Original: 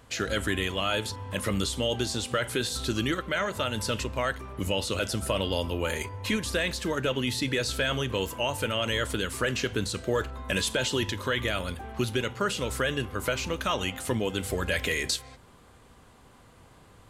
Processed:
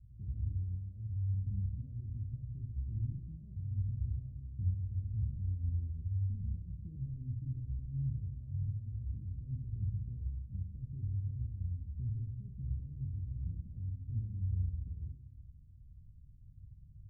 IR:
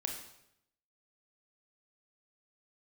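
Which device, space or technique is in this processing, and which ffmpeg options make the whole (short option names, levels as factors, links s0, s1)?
club heard from the street: -filter_complex "[0:a]alimiter=limit=0.0668:level=0:latency=1,lowpass=f=120:w=0.5412,lowpass=f=120:w=1.3066[s0];[1:a]atrim=start_sample=2205[s1];[s0][s1]afir=irnorm=-1:irlink=0,volume=1.58"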